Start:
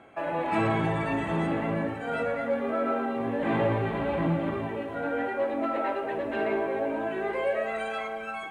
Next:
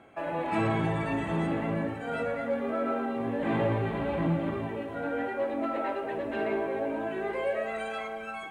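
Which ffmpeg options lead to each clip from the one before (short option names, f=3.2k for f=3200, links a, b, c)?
-af "equalizer=f=1.2k:w=0.31:g=-3"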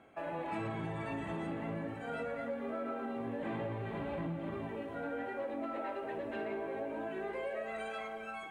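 -af "flanger=delay=4.2:depth=5.1:regen=-85:speed=0.41:shape=sinusoidal,acompressor=threshold=-34dB:ratio=6,volume=-1dB"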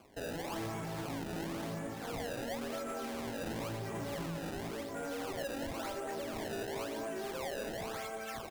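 -filter_complex "[0:a]acrusher=samples=23:mix=1:aa=0.000001:lfo=1:lforange=36.8:lforate=0.95,asoftclip=type=hard:threshold=-37dB,asplit=2[a][b];[b]adelay=227.4,volume=-10dB,highshelf=f=4k:g=-5.12[c];[a][c]amix=inputs=2:normalize=0,volume=1dB"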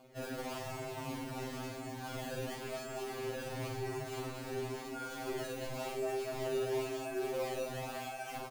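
-filter_complex "[0:a]asplit=2[a][b];[b]acrusher=samples=23:mix=1:aa=0.000001,volume=-4dB[c];[a][c]amix=inputs=2:normalize=0,asplit=2[d][e];[e]adelay=48,volume=-5dB[f];[d][f]amix=inputs=2:normalize=0,afftfilt=real='re*2.45*eq(mod(b,6),0)':imag='im*2.45*eq(mod(b,6),0)':win_size=2048:overlap=0.75,volume=-1.5dB"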